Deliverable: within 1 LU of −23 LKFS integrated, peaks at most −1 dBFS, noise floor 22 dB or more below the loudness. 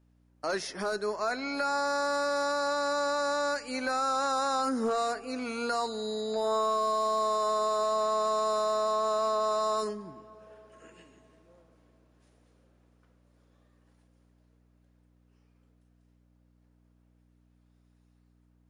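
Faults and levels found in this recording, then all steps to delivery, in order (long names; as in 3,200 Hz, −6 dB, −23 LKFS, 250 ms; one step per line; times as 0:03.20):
share of clipped samples 0.4%; peaks flattened at −22.0 dBFS; mains hum 60 Hz; hum harmonics up to 300 Hz; level of the hum −63 dBFS; integrated loudness −29.5 LKFS; sample peak −22.0 dBFS; target loudness −23.0 LKFS
→ clipped peaks rebuilt −22 dBFS
hum removal 60 Hz, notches 5
level +6.5 dB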